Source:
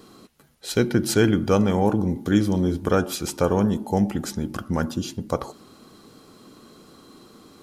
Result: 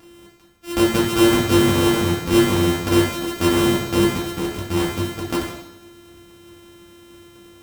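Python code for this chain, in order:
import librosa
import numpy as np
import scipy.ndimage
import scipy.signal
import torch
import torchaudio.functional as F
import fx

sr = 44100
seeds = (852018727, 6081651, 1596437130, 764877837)

y = np.r_[np.sort(x[:len(x) // 128 * 128].reshape(-1, 128), axis=1).ravel(), x[len(x) // 128 * 128:]]
y = fx.rev_double_slope(y, sr, seeds[0], early_s=0.74, late_s=2.1, knee_db=-23, drr_db=-4.5)
y = F.gain(torch.from_numpy(y), -3.0).numpy()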